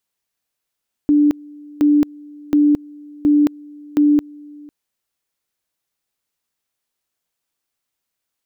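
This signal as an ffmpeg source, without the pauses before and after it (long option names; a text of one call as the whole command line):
ffmpeg -f lavfi -i "aevalsrc='pow(10,(-9.5-25.5*gte(mod(t,0.72),0.22))/20)*sin(2*PI*294*t)':duration=3.6:sample_rate=44100" out.wav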